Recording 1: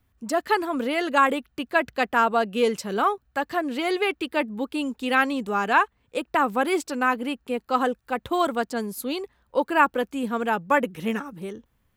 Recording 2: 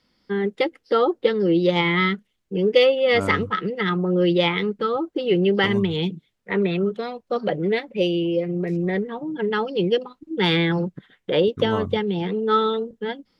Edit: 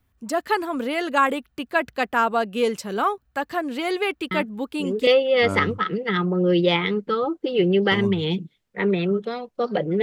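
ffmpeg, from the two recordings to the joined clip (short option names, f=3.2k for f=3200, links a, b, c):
-filter_complex "[1:a]asplit=2[a][b];[0:a]apad=whole_dur=10.02,atrim=end=10.02,atrim=end=5.072[c];[b]atrim=start=2.788:end=7.74[d];[a]atrim=start=2.03:end=2.79,asetpts=PTS-STARTPTS,volume=-6dB,afade=t=in:d=0.004:c=hsin,afade=t=out:st=0.756:d=0.004:c=hsin,adelay=4310[e];[c][d]acrossfade=d=0.004:c1=hsin:c2=hsin[f];[f][e]amix=inputs=2:normalize=0"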